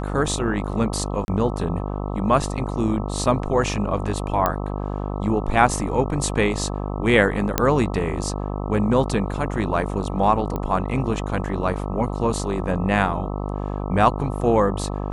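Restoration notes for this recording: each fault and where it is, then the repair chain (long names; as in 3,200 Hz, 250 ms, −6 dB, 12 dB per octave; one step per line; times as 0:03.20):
mains buzz 50 Hz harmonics 26 −27 dBFS
0:01.25–0:01.28: drop-out 31 ms
0:04.46: click −7 dBFS
0:07.58: click −2 dBFS
0:10.56: click −15 dBFS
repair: click removal
hum removal 50 Hz, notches 26
repair the gap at 0:01.25, 31 ms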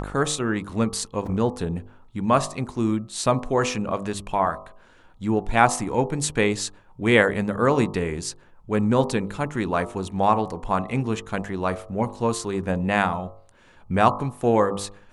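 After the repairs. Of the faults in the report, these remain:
none of them is left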